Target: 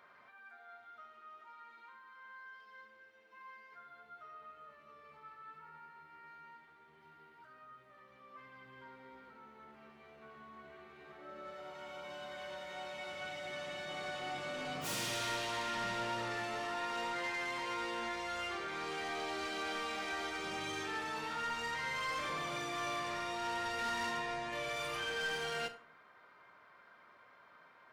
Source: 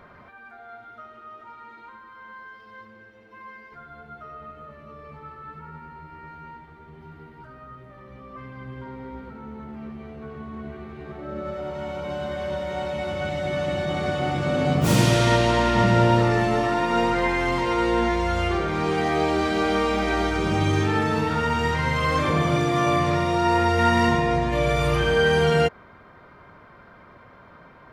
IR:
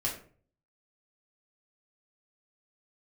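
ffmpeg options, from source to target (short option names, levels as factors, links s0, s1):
-filter_complex "[0:a]highpass=f=1400:p=1,asoftclip=type=tanh:threshold=0.0473,asplit=2[s0][s1];[1:a]atrim=start_sample=2205,asetrate=40572,aresample=44100,adelay=35[s2];[s1][s2]afir=irnorm=-1:irlink=0,volume=0.15[s3];[s0][s3]amix=inputs=2:normalize=0,volume=0.422"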